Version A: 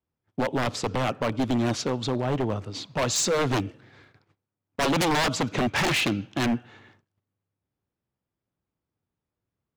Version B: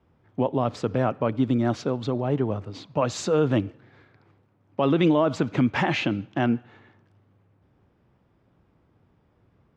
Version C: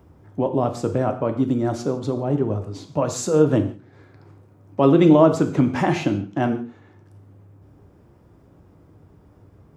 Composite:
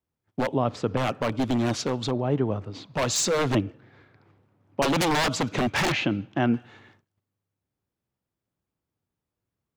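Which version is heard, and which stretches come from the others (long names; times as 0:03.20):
A
0:00.54–0:00.97: punch in from B
0:02.11–0:02.94: punch in from B
0:03.55–0:04.82: punch in from B
0:05.92–0:06.54: punch in from B
not used: C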